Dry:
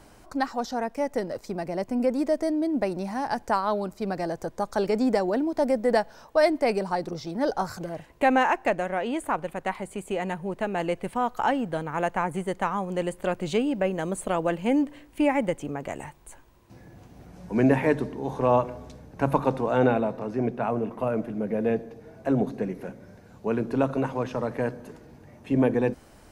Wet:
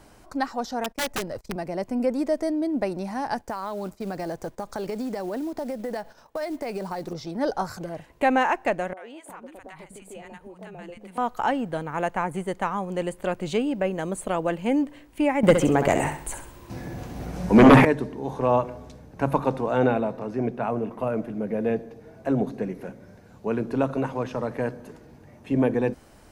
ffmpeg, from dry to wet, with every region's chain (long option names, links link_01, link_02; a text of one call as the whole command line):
ffmpeg -i in.wav -filter_complex "[0:a]asettb=1/sr,asplit=3[link_01][link_02][link_03];[link_01]atrim=end=0.844[link_04];[link_02]atrim=start=0.84:end=1.56,asetpts=PTS-STARTPTS,afade=type=in:duration=0.004:curve=qsin,afade=type=out:start_time=0.716:duration=0.004:curve=qsin,asubboost=boost=10.5:cutoff=150,aeval=exprs='(mod(12.6*val(0)+1,2)-1)/12.6':channel_layout=same,agate=range=-27dB:threshold=-42dB:ratio=16:release=100:detection=peak[link_05];[link_03]atrim=start=1.556[link_06];[link_04][link_05]acrossfade=duration=0.004:curve1=hsin:curve2=qsin[link_07];[link_07][link_06]acrossfade=duration=0.004:curve1=qsin:curve2=hsin,asettb=1/sr,asplit=3[link_08][link_09][link_10];[link_08]atrim=end=3.414[link_11];[link_09]atrim=start=3.41:end=7.13,asetpts=PTS-STARTPTS,afade=type=in:duration=0.004:curve=qsin,afade=type=out:start_time=3.716:duration=0.004:curve=qsin,agate=range=-9dB:threshold=-49dB:ratio=16:release=100:detection=peak,acompressor=threshold=-26dB:ratio=16:attack=3.2:release=140:knee=1:detection=peak,acrusher=bits=6:mode=log:mix=0:aa=0.000001[link_12];[link_10]atrim=start=7.126[link_13];[link_11][link_12]acrossfade=duration=0.004:curve1=hsin:curve2=qsin[link_14];[link_14][link_13]acrossfade=duration=0.004:curve1=qsin:curve2=hsin,asettb=1/sr,asplit=3[link_15][link_16][link_17];[link_15]atrim=end=8.934[link_18];[link_16]atrim=start=8.93:end=11.18,asetpts=PTS-STARTPTS,afade=type=in:duration=0.004:curve=qsin,afade=type=out:start_time=2.246:duration=0.004:curve=qsin,acompressor=threshold=-39dB:ratio=3:attack=3.2:release=140:knee=1:detection=peak,acrossover=split=260|830[link_19][link_20][link_21];[link_21]adelay=40[link_22];[link_19]adelay=360[link_23];[link_23][link_20][link_22]amix=inputs=3:normalize=0,atrim=end_sample=99225[link_24];[link_17]atrim=start=11.176[link_25];[link_18][link_24]acrossfade=duration=0.004:curve1=hsin:curve2=qsin[link_26];[link_26][link_25]acrossfade=duration=0.004:curve1=qsin:curve2=hsin,asettb=1/sr,asplit=3[link_27][link_28][link_29];[link_27]atrim=end=15.434[link_30];[link_28]atrim=start=15.43:end=17.85,asetpts=PTS-STARTPTS,afade=type=in:duration=0.004:curve=qsin,afade=type=out:start_time=2.416:duration=0.004:curve=qsin,aeval=exprs='0.398*sin(PI/2*2.82*val(0)/0.398)':channel_layout=same,aecho=1:1:66|132|198|264:0.398|0.143|0.0516|0.0186,atrim=end_sample=106722[link_31];[link_29]atrim=start=17.846[link_32];[link_30][link_31]acrossfade=duration=0.004:curve1=hsin:curve2=qsin[link_33];[link_33][link_32]acrossfade=duration=0.004:curve1=qsin:curve2=hsin" out.wav